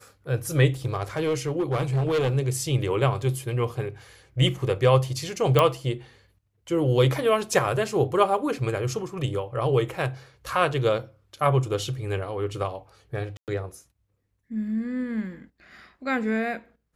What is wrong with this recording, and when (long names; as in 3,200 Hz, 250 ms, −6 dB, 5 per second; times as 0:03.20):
0:00.85–0:02.37: clipping −20 dBFS
0:05.59: click −7 dBFS
0:13.37–0:13.48: drop-out 108 ms